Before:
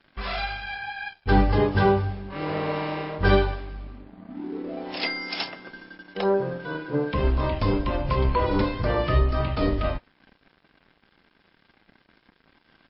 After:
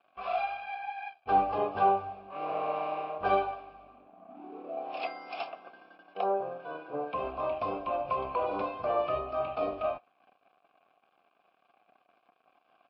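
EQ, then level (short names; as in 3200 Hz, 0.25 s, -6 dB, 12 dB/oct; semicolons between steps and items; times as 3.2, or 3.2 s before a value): vowel filter a; high shelf 4100 Hz -7 dB; +6.5 dB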